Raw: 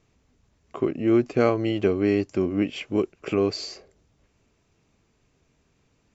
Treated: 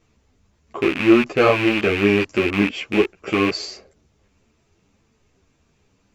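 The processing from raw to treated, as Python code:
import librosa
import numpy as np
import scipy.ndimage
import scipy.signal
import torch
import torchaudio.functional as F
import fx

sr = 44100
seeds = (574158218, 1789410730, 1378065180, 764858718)

y = fx.rattle_buzz(x, sr, strikes_db=-31.0, level_db=-17.0)
y = fx.dynamic_eq(y, sr, hz=1200.0, q=0.71, threshold_db=-38.0, ratio=4.0, max_db=6)
y = fx.ensemble(y, sr)
y = y * librosa.db_to_amplitude(6.5)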